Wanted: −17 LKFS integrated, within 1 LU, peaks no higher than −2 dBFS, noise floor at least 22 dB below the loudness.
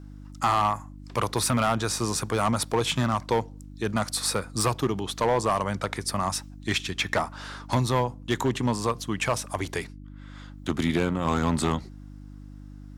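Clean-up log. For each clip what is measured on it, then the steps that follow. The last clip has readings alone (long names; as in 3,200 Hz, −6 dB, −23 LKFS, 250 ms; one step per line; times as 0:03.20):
share of clipped samples 1.3%; peaks flattened at −16.5 dBFS; mains hum 50 Hz; hum harmonics up to 300 Hz; level of the hum −41 dBFS; integrated loudness −27.0 LKFS; sample peak −16.5 dBFS; target loudness −17.0 LKFS
→ clipped peaks rebuilt −16.5 dBFS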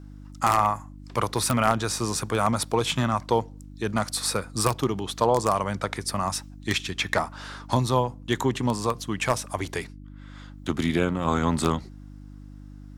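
share of clipped samples 0.0%; mains hum 50 Hz; hum harmonics up to 300 Hz; level of the hum −41 dBFS
→ hum removal 50 Hz, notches 6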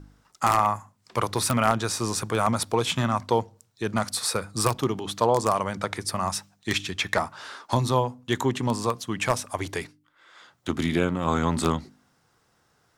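mains hum none found; integrated loudness −26.0 LKFS; sample peak −7.5 dBFS; target loudness −17.0 LKFS
→ level +9 dB
brickwall limiter −2 dBFS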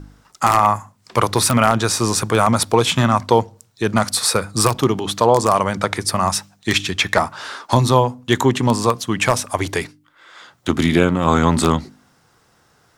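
integrated loudness −17.5 LKFS; sample peak −2.0 dBFS; background noise floor −58 dBFS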